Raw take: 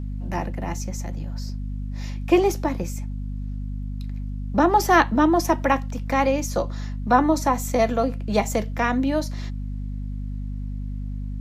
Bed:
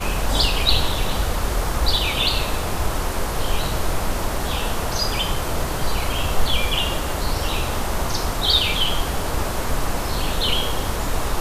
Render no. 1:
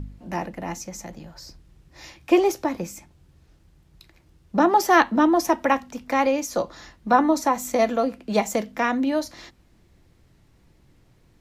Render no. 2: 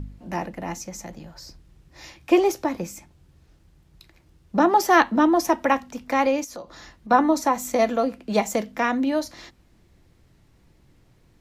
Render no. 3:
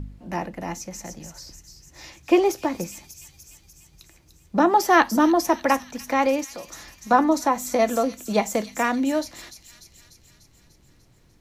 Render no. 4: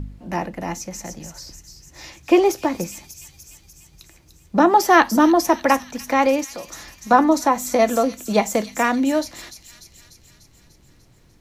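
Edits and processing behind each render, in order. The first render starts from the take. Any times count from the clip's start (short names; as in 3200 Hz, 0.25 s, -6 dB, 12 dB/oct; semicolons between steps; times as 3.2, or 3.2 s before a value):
de-hum 50 Hz, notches 5
6.44–7.11 compressor 2.5:1, threshold -39 dBFS
thin delay 0.296 s, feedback 62%, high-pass 4900 Hz, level -4 dB
gain +3.5 dB; limiter -3 dBFS, peak gain reduction 1.5 dB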